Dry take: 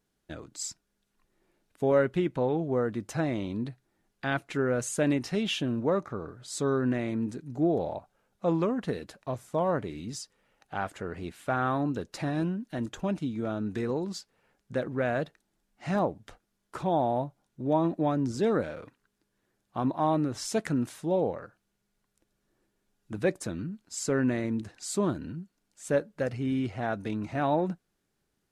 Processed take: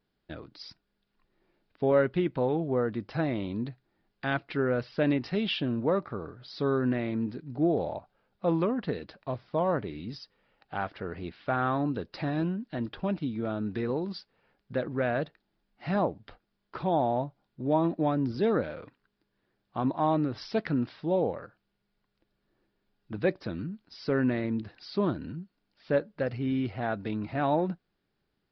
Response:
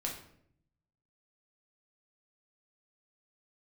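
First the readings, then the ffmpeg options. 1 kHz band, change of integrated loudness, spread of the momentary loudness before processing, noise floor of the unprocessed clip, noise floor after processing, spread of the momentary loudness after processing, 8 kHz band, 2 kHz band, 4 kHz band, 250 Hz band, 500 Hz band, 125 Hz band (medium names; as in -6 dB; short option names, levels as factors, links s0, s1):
0.0 dB, 0.0 dB, 12 LU, -79 dBFS, -79 dBFS, 13 LU, under -25 dB, 0.0 dB, -0.5 dB, 0.0 dB, 0.0 dB, 0.0 dB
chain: -af "aresample=11025,aresample=44100"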